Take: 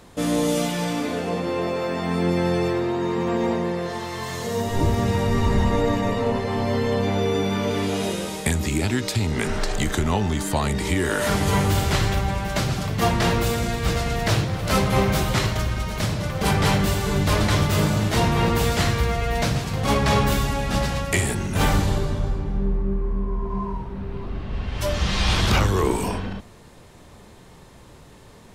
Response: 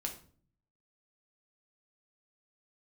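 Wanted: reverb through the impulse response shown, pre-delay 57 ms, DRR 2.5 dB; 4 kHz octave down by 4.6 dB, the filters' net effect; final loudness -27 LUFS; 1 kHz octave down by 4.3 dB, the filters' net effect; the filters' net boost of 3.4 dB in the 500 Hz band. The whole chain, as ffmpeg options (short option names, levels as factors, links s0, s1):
-filter_complex "[0:a]equalizer=f=500:t=o:g=6,equalizer=f=1000:t=o:g=-8,equalizer=f=4000:t=o:g=-5.5,asplit=2[s0][s1];[1:a]atrim=start_sample=2205,adelay=57[s2];[s1][s2]afir=irnorm=-1:irlink=0,volume=0.75[s3];[s0][s3]amix=inputs=2:normalize=0,volume=0.473"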